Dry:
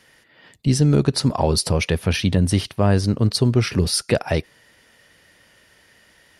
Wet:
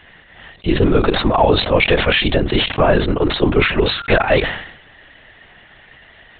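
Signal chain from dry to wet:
high-pass filter 370 Hz 12 dB per octave
high-frequency loss of the air 84 metres
linear-prediction vocoder at 8 kHz whisper
boost into a limiter +13.5 dB
level that may fall only so fast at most 76 dB per second
level −2 dB

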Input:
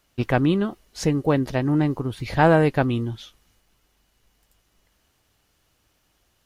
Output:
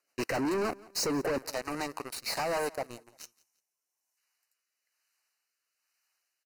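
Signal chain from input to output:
0:02.58–0:04.17: gain on a spectral selection 1,100–5,200 Hz −10 dB
high-pass filter 490 Hz 12 dB per octave, from 0:01.38 1,300 Hz
0:00.36–0:03.13: gain on a spectral selection 1,300–3,200 Hz −10 dB
leveller curve on the samples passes 2
downward compressor, threshold −21 dBFS, peak gain reduction 8.5 dB
leveller curve on the samples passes 2
rotating-speaker cabinet horn 7 Hz, later 1.1 Hz, at 0:01.89
hard clipping −28 dBFS, distortion −6 dB
Butterworth band-reject 3,400 Hz, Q 3
repeating echo 173 ms, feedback 33%, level −22.5 dB

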